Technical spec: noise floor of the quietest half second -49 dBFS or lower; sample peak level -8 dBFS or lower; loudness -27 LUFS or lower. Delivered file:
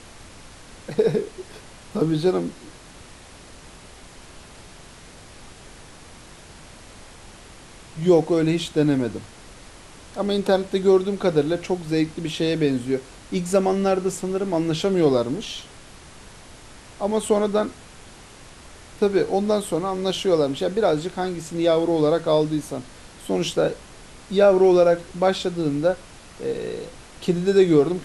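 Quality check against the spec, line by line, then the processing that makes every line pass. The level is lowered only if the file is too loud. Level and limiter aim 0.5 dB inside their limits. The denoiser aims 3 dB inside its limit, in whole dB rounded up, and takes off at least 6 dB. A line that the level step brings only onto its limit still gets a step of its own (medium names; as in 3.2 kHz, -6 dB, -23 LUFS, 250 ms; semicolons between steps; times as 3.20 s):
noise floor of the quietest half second -44 dBFS: fail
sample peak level -5.5 dBFS: fail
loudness -22.0 LUFS: fail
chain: trim -5.5 dB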